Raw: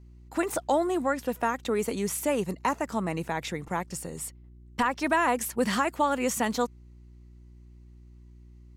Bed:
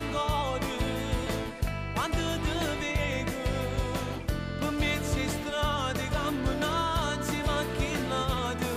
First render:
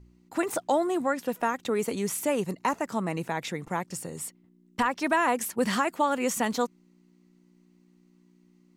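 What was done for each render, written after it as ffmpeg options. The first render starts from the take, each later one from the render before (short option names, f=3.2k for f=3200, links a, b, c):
-af "bandreject=f=60:t=h:w=4,bandreject=f=120:t=h:w=4"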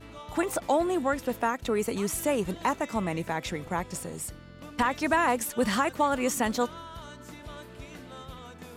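-filter_complex "[1:a]volume=-14.5dB[a];[0:a][a]amix=inputs=2:normalize=0"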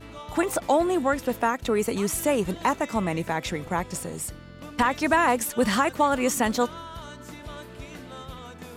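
-af "volume=3.5dB"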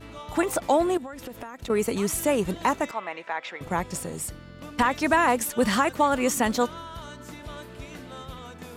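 -filter_complex "[0:a]asettb=1/sr,asplit=3[a][b][c];[a]atrim=end=0.974[d];[b]atrim=start=0.97:end=1.7,asetpts=PTS-STARTPTS,afade=t=in:d=0.004:c=qsin,afade=t=out:st=0.726:d=0.004:c=qsin,acompressor=threshold=-33dB:ratio=20:attack=3.2:release=140:knee=1:detection=peak[e];[c]atrim=start=1.696[f];[d][e]acrossfade=d=0.004:c1=hsin:c2=qsin[g];[g][f]acrossfade=d=0.004:c1=qsin:c2=hsin,asettb=1/sr,asplit=3[h][i][j];[h]atrim=end=2.914[k];[i]atrim=start=2.91:end=3.61,asetpts=PTS-STARTPTS,afade=t=in:d=0.004:c=qsin,afade=t=out:st=0.696:d=0.004:c=qsin,highpass=760,lowpass=2.9k[l];[j]atrim=start=3.606[m];[k][l]acrossfade=d=0.004:c1=hsin:c2=qsin[n];[n][m]acrossfade=d=0.004:c1=qsin:c2=hsin"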